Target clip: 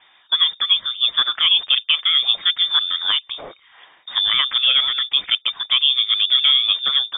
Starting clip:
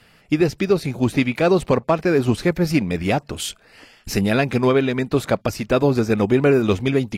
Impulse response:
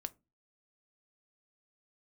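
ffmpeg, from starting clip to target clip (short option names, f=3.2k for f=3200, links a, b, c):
-filter_complex "[0:a]asettb=1/sr,asplit=3[a][b][c];[a]atrim=end=5.794[d];[b]atrim=start=5.79:end=6.86,asetpts=PTS-STARTPTS,afade=t=in:d=0.004:c=qsin,afade=t=out:st=1.066:d=0.004:c=qsin,aemphasis=mode=reproduction:type=75kf[e];[c]atrim=start=6.856[f];[d][e]acrossfade=d=0.004:c1=hsin:c2=qsin[g];[g][f]acrossfade=d=0.004:c1=qsin:c2=hsin,lowpass=f=3.1k:t=q:w=0.5098,lowpass=f=3.1k:t=q:w=0.6013,lowpass=f=3.1k:t=q:w=0.9,lowpass=f=3.1k:t=q:w=2.563,afreqshift=-3700"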